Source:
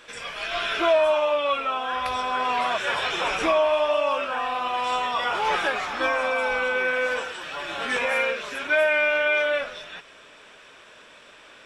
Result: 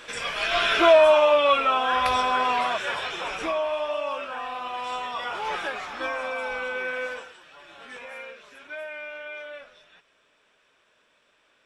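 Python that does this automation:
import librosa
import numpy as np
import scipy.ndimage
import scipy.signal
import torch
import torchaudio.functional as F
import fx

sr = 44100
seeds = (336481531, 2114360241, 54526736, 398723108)

y = fx.gain(x, sr, db=fx.line((2.15, 4.5), (3.18, -6.0), (7.04, -6.0), (7.44, -16.0)))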